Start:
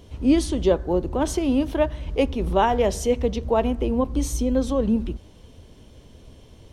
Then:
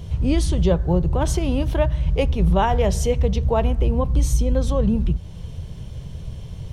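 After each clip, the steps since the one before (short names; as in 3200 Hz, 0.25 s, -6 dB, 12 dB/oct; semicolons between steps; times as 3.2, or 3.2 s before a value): resonant low shelf 200 Hz +8 dB, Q 3; compressor 1.5:1, threshold -30 dBFS, peak gain reduction 6.5 dB; gain +6 dB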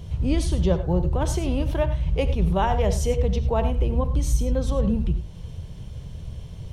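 reverb, pre-delay 3 ms, DRR 10 dB; gain -3.5 dB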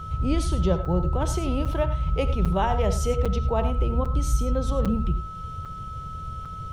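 whine 1300 Hz -34 dBFS; crackling interface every 0.80 s, samples 256, zero, from 0.85; gain -1.5 dB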